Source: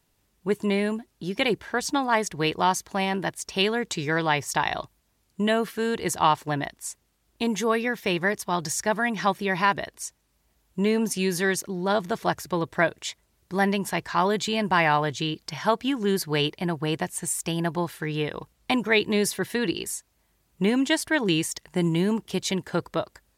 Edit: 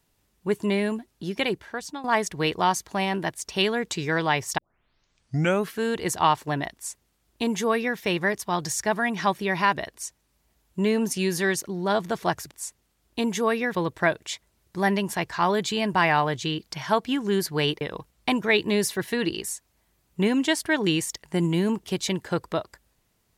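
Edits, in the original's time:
0:01.26–0:02.04: fade out, to −14 dB
0:04.58: tape start 1.12 s
0:06.74–0:07.98: duplicate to 0:12.51
0:16.57–0:18.23: remove

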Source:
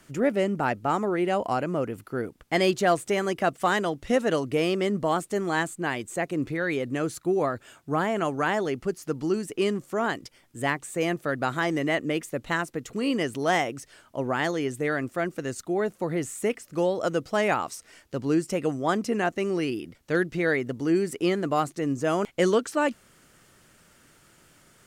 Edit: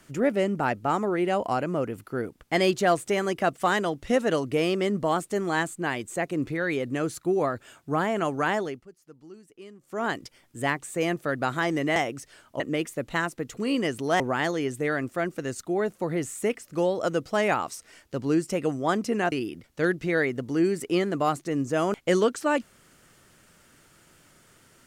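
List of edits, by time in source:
0:08.55–0:10.10: duck −20.5 dB, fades 0.30 s
0:13.56–0:14.20: move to 0:11.96
0:19.32–0:19.63: remove

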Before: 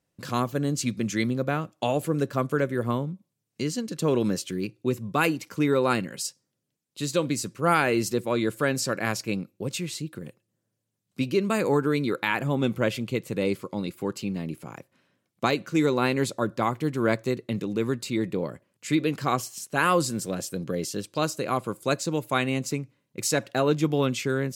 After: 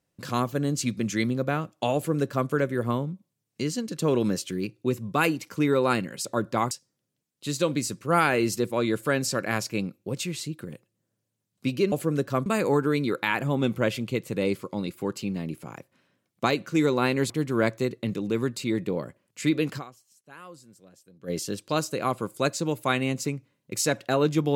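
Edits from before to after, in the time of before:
0:01.95–0:02.49: duplicate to 0:11.46
0:16.30–0:16.76: move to 0:06.25
0:19.23–0:20.76: duck −23.5 dB, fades 0.31 s exponential

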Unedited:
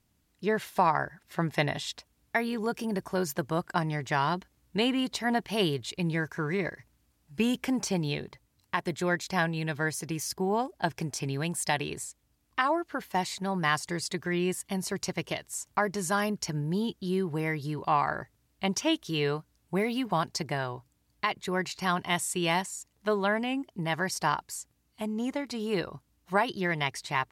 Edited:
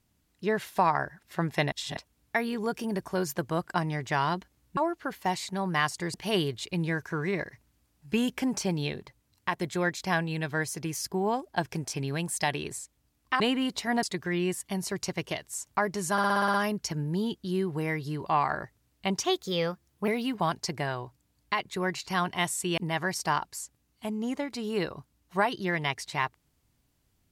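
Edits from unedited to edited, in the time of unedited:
0:01.72–0:01.97: reverse
0:04.77–0:05.40: swap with 0:12.66–0:14.03
0:16.12: stutter 0.06 s, 8 plays
0:18.82–0:19.79: play speed 116%
0:22.49–0:23.74: remove

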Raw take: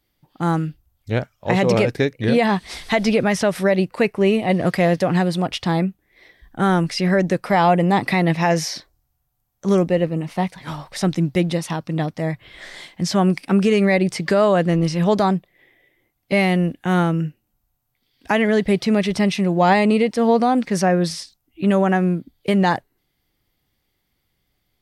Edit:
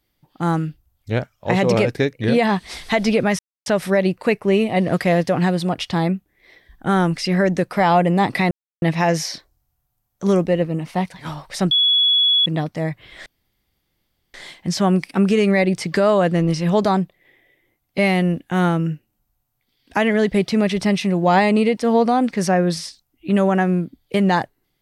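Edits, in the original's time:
0:03.39: splice in silence 0.27 s
0:08.24: splice in silence 0.31 s
0:11.13–0:11.88: beep over 3,380 Hz −12.5 dBFS
0:12.68: splice in room tone 1.08 s

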